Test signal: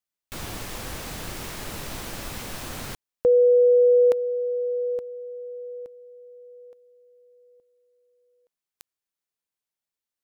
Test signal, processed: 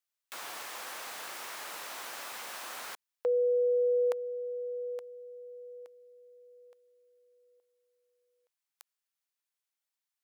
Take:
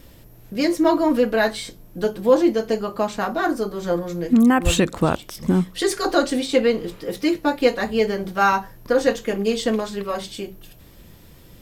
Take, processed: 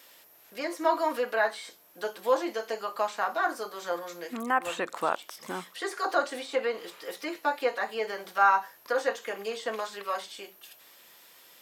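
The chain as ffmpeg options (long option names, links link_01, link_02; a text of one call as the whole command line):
ffmpeg -i in.wav -filter_complex "[0:a]highpass=880,acrossover=split=1700[link_01][link_02];[link_02]acompressor=threshold=-41dB:ratio=6:attack=2.9:release=84:detection=rms[link_03];[link_01][link_03]amix=inputs=2:normalize=0" out.wav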